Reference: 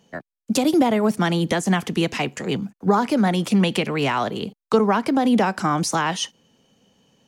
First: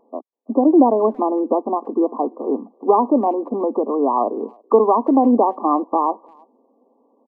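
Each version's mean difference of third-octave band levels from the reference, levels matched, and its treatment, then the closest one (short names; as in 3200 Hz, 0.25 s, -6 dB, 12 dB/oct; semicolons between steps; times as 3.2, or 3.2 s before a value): 14.5 dB: brick-wall FIR band-pass 230–1200 Hz; speakerphone echo 0.33 s, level -29 dB; gain +5.5 dB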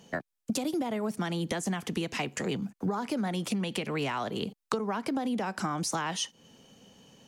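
3.0 dB: bell 10000 Hz +2.5 dB 1.8 oct; compressor 10:1, threshold -32 dBFS, peak gain reduction 20 dB; gain +3.5 dB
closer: second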